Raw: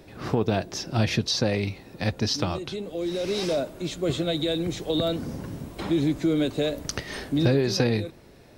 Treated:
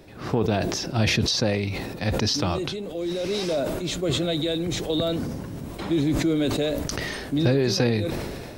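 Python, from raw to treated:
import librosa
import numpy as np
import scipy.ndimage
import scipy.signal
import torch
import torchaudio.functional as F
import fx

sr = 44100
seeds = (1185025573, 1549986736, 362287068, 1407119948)

y = fx.sustainer(x, sr, db_per_s=29.0)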